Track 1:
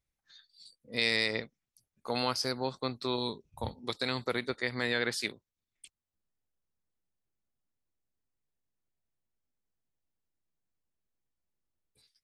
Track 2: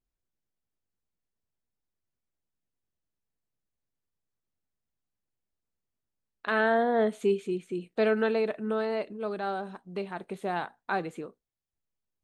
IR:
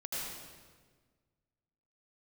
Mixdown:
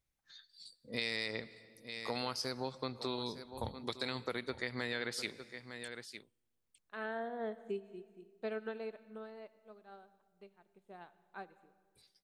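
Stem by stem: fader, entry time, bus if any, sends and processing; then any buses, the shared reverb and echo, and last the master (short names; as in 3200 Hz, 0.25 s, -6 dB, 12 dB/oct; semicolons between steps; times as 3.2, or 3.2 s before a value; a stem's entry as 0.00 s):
0.0 dB, 0.00 s, send -23 dB, echo send -15.5 dB, dry
-9.5 dB, 0.45 s, send -18 dB, no echo send, upward expander 2.5:1, over -38 dBFS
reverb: on, RT60 1.5 s, pre-delay 74 ms
echo: echo 0.907 s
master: compressor 2.5:1, threshold -37 dBFS, peak gain reduction 9.5 dB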